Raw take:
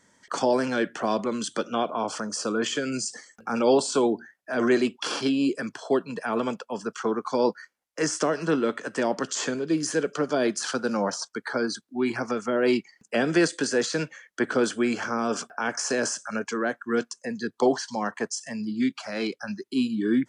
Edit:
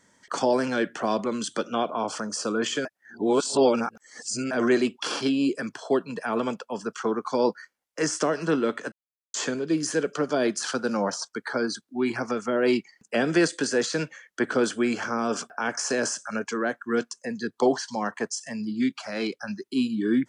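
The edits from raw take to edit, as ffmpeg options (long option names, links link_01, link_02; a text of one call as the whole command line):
ffmpeg -i in.wav -filter_complex "[0:a]asplit=5[link_01][link_02][link_03][link_04][link_05];[link_01]atrim=end=2.852[link_06];[link_02]atrim=start=2.848:end=4.512,asetpts=PTS-STARTPTS,areverse[link_07];[link_03]atrim=start=4.508:end=8.92,asetpts=PTS-STARTPTS,afade=type=out:start_time=4.408:duration=0.004:curve=hsin[link_08];[link_04]atrim=start=8.92:end=9.34,asetpts=PTS-STARTPTS,volume=0[link_09];[link_05]atrim=start=9.34,asetpts=PTS-STARTPTS,afade=type=in:duration=0.004:curve=hsin[link_10];[link_06][link_07]acrossfade=duration=0.004:curve1=hsin:curve2=hsin[link_11];[link_08][link_09][link_10]concat=n=3:v=0:a=1[link_12];[link_11][link_12]acrossfade=duration=0.004:curve1=hsin:curve2=hsin" out.wav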